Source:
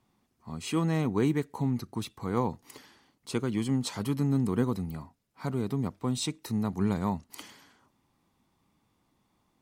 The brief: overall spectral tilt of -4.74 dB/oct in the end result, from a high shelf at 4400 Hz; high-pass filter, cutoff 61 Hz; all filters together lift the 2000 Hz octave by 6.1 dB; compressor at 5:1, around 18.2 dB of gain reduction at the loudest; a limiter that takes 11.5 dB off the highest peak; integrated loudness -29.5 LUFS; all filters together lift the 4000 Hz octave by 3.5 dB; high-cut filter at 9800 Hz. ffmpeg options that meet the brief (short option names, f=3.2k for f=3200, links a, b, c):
-af "highpass=61,lowpass=9.8k,equalizer=f=2k:t=o:g=7.5,equalizer=f=4k:t=o:g=5,highshelf=f=4.4k:g=-6,acompressor=threshold=-43dB:ratio=5,volume=20dB,alimiter=limit=-19dB:level=0:latency=1"